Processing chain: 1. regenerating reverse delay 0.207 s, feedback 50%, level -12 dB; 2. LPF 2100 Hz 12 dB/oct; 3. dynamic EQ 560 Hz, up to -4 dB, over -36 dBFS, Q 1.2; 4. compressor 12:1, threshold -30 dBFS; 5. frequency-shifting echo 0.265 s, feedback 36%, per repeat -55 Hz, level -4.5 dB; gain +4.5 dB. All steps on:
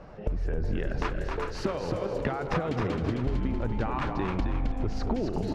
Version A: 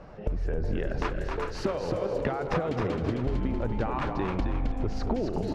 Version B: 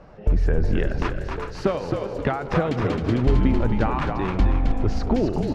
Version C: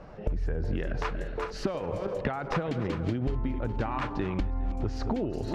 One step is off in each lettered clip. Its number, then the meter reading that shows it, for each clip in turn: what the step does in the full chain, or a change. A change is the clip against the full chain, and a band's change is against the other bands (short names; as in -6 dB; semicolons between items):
3, 500 Hz band +2.5 dB; 4, mean gain reduction 5.0 dB; 5, loudness change -1.0 LU